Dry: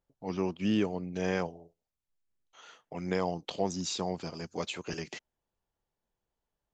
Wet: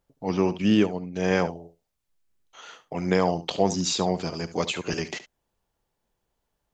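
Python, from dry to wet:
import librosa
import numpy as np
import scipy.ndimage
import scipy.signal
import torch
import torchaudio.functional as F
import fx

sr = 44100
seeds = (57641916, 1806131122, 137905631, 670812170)

y = x + 10.0 ** (-14.5 / 20.0) * np.pad(x, (int(71 * sr / 1000.0), 0))[:len(x)]
y = fx.upward_expand(y, sr, threshold_db=-37.0, expansion=1.5, at=(0.62, 1.31))
y = y * 10.0 ** (8.5 / 20.0)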